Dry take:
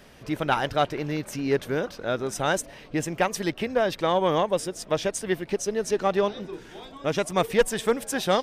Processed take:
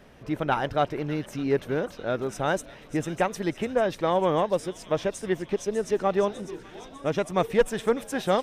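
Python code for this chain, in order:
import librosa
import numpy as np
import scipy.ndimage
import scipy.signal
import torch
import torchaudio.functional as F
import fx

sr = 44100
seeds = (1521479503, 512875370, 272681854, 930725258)

y = fx.high_shelf(x, sr, hz=2400.0, db=-9.0)
y = fx.notch(y, sr, hz=4700.0, q=22.0)
y = fx.echo_wet_highpass(y, sr, ms=599, feedback_pct=56, hz=2600.0, wet_db=-9.0)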